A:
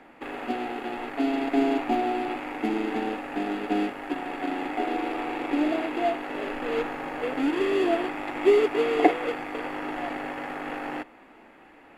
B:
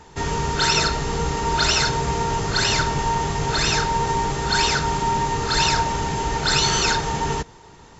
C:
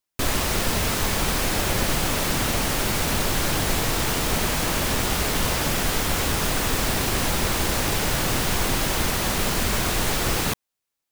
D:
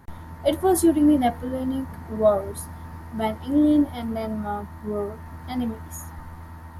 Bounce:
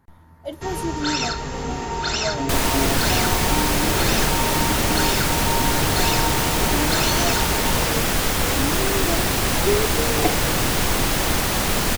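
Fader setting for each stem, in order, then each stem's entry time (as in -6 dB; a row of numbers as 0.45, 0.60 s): -3.0, -5.0, +2.5, -10.5 dB; 1.20, 0.45, 2.30, 0.00 s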